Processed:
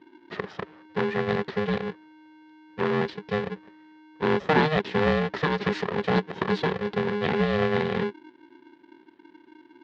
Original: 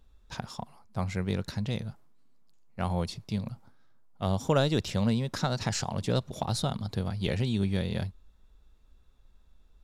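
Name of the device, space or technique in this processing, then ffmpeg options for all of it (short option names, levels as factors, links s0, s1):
ring modulator pedal into a guitar cabinet: -af "aeval=exprs='val(0)*sgn(sin(2*PI*310*n/s))':c=same,highpass=100,equalizer=f=190:t=q:w=4:g=7,equalizer=f=390:t=q:w=4:g=8,equalizer=f=930:t=q:w=4:g=3,equalizer=f=1800:t=q:w=4:g=8,lowpass=f=3800:w=0.5412,lowpass=f=3800:w=1.3066,volume=1.12"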